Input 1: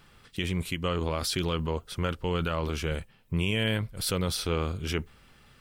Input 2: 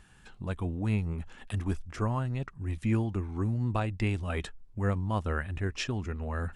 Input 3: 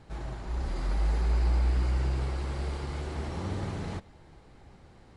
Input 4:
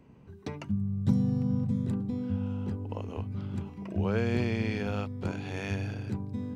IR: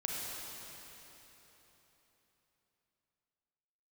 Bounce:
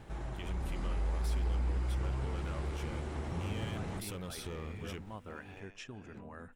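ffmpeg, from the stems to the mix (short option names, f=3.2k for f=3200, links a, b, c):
-filter_complex "[0:a]dynaudnorm=f=340:g=7:m=8.5dB,asoftclip=type=hard:threshold=-17.5dB,acompressor=threshold=-27dB:ratio=6,volume=-8.5dB[a];[1:a]equalizer=f=66:t=o:w=0.97:g=-15,volume=-11dB[b];[2:a]volume=2dB[c];[3:a]tremolo=f=1.3:d=0.95,asplit=2[d][e];[e]highpass=f=720:p=1,volume=20dB,asoftclip=type=tanh:threshold=-19.5dB[f];[d][f]amix=inputs=2:normalize=0,lowpass=f=2.3k:p=1,volume=-6dB,adelay=50,volume=-17.5dB[g];[a][b][c][g]amix=inputs=4:normalize=0,equalizer=f=4.5k:w=3.1:g=-7,acompressor=threshold=-46dB:ratio=1.5"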